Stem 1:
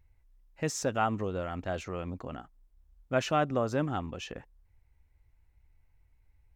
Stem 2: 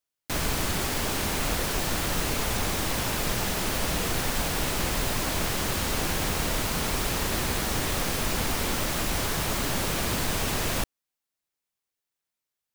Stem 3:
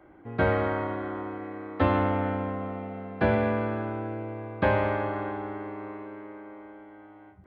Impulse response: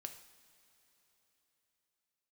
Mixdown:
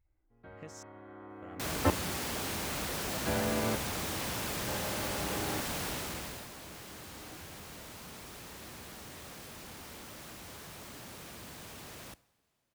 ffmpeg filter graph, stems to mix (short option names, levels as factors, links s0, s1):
-filter_complex "[0:a]acompressor=threshold=0.02:ratio=4,volume=0.266,asplit=3[s0][s1][s2];[s0]atrim=end=0.83,asetpts=PTS-STARTPTS,afade=t=out:st=0.826:d=0.004:c=hsin[s3];[s1]atrim=start=0.83:end=1.42,asetpts=PTS-STARTPTS,volume=0[s4];[s2]atrim=start=1.42,asetpts=PTS-STARTPTS,afade=t=in:d=0.004:c=hsin[s5];[s3][s4][s5]concat=n=3:v=0:a=1[s6];[1:a]highpass=70,asoftclip=type=hard:threshold=0.0473,adelay=1300,volume=0.376,afade=t=out:st=5.84:d=0.66:silence=0.266073,asplit=2[s7][s8];[s8]volume=0.631[s9];[2:a]aeval=exprs='val(0)*pow(10,-33*if(lt(mod(-0.54*n/s,1),2*abs(-0.54)/1000),1-mod(-0.54*n/s,1)/(2*abs(-0.54)/1000),(mod(-0.54*n/s,1)-2*abs(-0.54)/1000)/(1-2*abs(-0.54)/1000))/20)':c=same,adelay=50,volume=0.531,asplit=2[s10][s11];[s11]volume=0.668[s12];[3:a]atrim=start_sample=2205[s13];[s9][s12]amix=inputs=2:normalize=0[s14];[s14][s13]afir=irnorm=-1:irlink=0[s15];[s6][s7][s10][s15]amix=inputs=4:normalize=0"